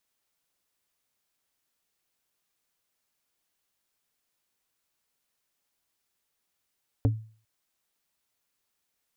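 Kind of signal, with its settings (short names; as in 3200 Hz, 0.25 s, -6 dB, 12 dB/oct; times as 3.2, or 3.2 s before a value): wood hit plate, length 0.40 s, lowest mode 110 Hz, decay 0.42 s, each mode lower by 5 dB, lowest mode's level -17 dB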